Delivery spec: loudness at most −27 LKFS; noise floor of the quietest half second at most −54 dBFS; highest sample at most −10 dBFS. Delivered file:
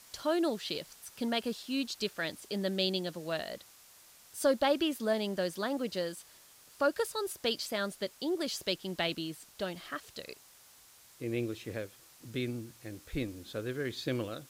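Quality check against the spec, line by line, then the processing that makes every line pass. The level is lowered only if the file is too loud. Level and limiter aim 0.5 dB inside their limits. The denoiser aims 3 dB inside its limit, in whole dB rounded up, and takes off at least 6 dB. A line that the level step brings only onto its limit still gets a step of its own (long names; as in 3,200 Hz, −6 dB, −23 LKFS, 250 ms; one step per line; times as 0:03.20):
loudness −34.5 LKFS: in spec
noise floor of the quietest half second −59 dBFS: in spec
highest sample −17.0 dBFS: in spec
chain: no processing needed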